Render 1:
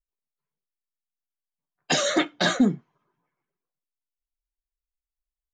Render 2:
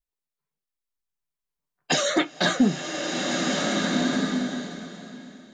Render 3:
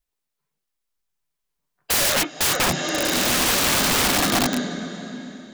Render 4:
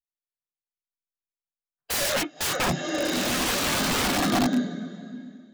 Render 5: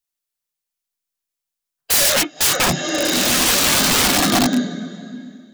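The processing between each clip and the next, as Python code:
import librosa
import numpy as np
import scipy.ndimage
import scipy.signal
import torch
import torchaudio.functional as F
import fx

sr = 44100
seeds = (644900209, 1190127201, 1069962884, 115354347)

y1 = fx.rev_bloom(x, sr, seeds[0], attack_ms=1620, drr_db=0.0)
y2 = (np.mod(10.0 ** (21.5 / 20.0) * y1 + 1.0, 2.0) - 1.0) / 10.0 ** (21.5 / 20.0)
y2 = y2 * 10.0 ** (7.0 / 20.0)
y3 = fx.spectral_expand(y2, sr, expansion=1.5)
y4 = fx.high_shelf(y3, sr, hz=3100.0, db=8.0)
y4 = y4 * 10.0 ** (5.5 / 20.0)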